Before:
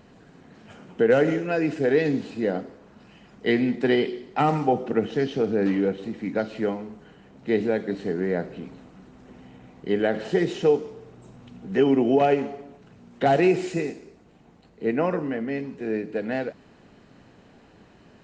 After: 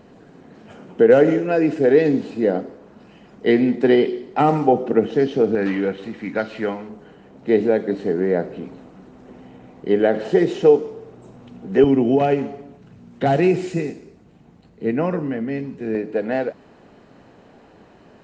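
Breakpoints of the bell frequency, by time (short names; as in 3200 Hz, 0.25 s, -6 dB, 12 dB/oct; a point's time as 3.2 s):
bell +7 dB 2.6 oct
420 Hz
from 5.55 s 1700 Hz
from 6.89 s 480 Hz
from 11.84 s 120 Hz
from 15.95 s 620 Hz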